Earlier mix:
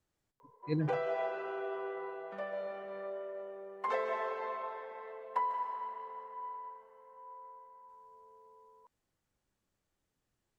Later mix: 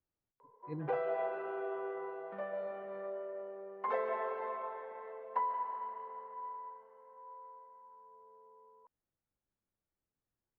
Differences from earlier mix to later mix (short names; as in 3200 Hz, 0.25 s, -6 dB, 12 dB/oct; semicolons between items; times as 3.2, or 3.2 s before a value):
speech -9.0 dB; master: add Bessel low-pass 1700 Hz, order 2